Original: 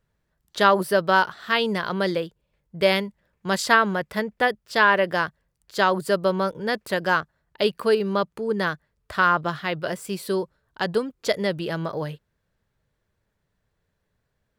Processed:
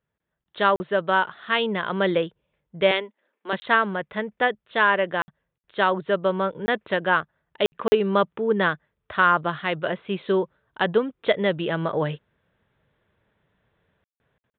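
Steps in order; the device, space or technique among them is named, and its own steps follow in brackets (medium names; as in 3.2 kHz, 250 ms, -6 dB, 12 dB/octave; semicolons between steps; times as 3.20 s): 2.91–3.53 s: Chebyshev high-pass 240 Hz, order 5; call with lost packets (high-pass 140 Hz 6 dB/octave; resampled via 8 kHz; level rider gain up to 14 dB; lost packets bursts); trim -5.5 dB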